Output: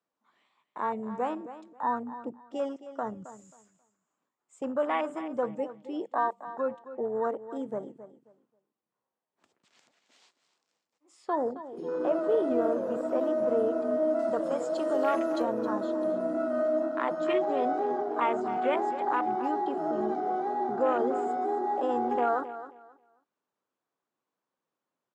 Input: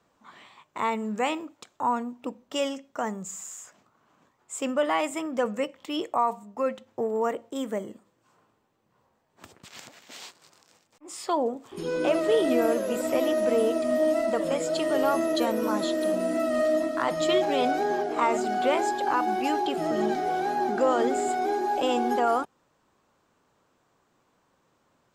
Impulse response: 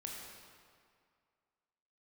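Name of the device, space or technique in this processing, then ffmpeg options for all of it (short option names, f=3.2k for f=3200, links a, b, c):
over-cleaned archive recording: -filter_complex "[0:a]highpass=200,lowpass=8k,afwtdn=0.0316,asettb=1/sr,asplit=3[a][b][c];[a]atrim=end=14.194[d];[b]atrim=start=14.19:end=15.42,asetpts=PTS-STARTPTS,afade=t=in:d=0.004:c=qsin,afade=t=out:st=1.226:d=0.004:c=qsin,highshelf=f=3.4k:g=11[e];[c]atrim=start=15.416[f];[d][e]acrossfade=d=0.004:c1=hsin:c2=qsin[g];[g][f]acrossfade=d=0.004:c1=qsin:c2=hsin,aecho=1:1:268|536|804:0.211|0.0465|0.0102,volume=-3dB"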